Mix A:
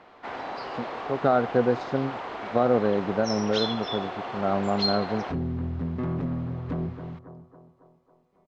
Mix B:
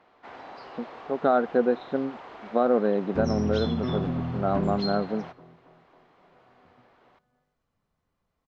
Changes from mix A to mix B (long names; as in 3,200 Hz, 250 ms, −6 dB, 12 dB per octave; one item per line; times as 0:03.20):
speech: add linear-phase brick-wall band-pass 150–4,200 Hz
first sound −8.5 dB
second sound: entry −2.15 s